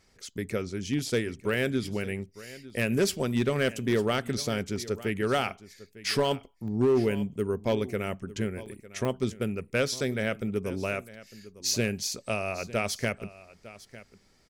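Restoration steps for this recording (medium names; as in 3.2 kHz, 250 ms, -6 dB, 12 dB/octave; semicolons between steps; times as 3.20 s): clip repair -18 dBFS; interpolate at 0.99/2.70/4.28/4.76/6.11/6.68/8.66/9.05 s, 1.2 ms; inverse comb 903 ms -18 dB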